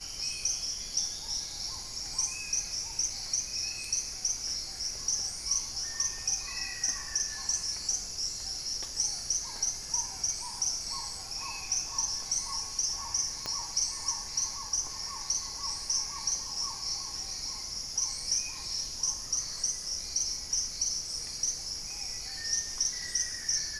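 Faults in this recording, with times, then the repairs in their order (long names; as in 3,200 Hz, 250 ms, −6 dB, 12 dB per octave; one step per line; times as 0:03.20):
0:13.46: click −19 dBFS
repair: click removal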